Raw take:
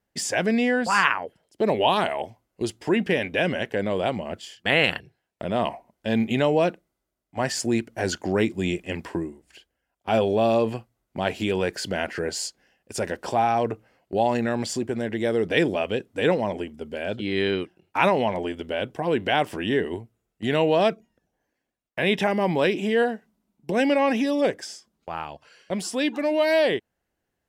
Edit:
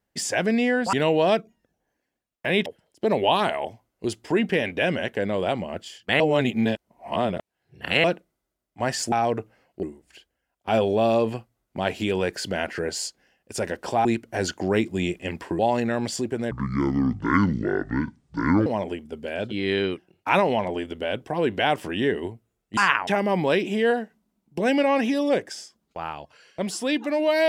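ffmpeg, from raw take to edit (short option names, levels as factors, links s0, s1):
-filter_complex "[0:a]asplit=13[s0][s1][s2][s3][s4][s5][s6][s7][s8][s9][s10][s11][s12];[s0]atrim=end=0.932[s13];[s1]atrim=start=20.458:end=22.192[s14];[s2]atrim=start=1.228:end=4.772[s15];[s3]atrim=start=4.768:end=6.612,asetpts=PTS-STARTPTS,areverse[s16];[s4]atrim=start=6.608:end=7.692[s17];[s5]atrim=start=13.448:end=14.162[s18];[s6]atrim=start=9.228:end=13.452[s19];[s7]atrim=start=7.688:end=9.232[s20];[s8]atrim=start=14.158:end=15.084[s21];[s9]atrim=start=15.08:end=16.35,asetpts=PTS-STARTPTS,asetrate=26019,aresample=44100,atrim=end_sample=94927,asetpts=PTS-STARTPTS[s22];[s10]atrim=start=16.346:end=20.462[s23];[s11]atrim=start=0.928:end=1.232[s24];[s12]atrim=start=22.188[s25];[s13][s14]acrossfade=d=0.004:c1=hsin:c2=hsin[s26];[s26][s15]acrossfade=d=0.004:c1=hsin:c2=hsin[s27];[s27][s16]acrossfade=d=0.004:c1=hsin:c2=hsin[s28];[s28][s17]acrossfade=d=0.004:c1=hsin:c2=hsin[s29];[s29][s18]acrossfade=d=0.004:c1=hsin:c2=hsin[s30];[s30][s19]acrossfade=d=0.004:c1=hsin:c2=hsin[s31];[s31][s20]acrossfade=d=0.004:c1=hsin:c2=hsin[s32];[s32][s21]acrossfade=d=0.004:c1=hsin:c2=hsin[s33];[s33][s22]acrossfade=d=0.004:c1=hsin:c2=hsin[s34];[s34][s23]acrossfade=d=0.004:c1=hsin:c2=hsin[s35];[s35][s24]acrossfade=d=0.004:c1=hsin:c2=hsin[s36];[s36][s25]acrossfade=d=0.004:c1=hsin:c2=hsin"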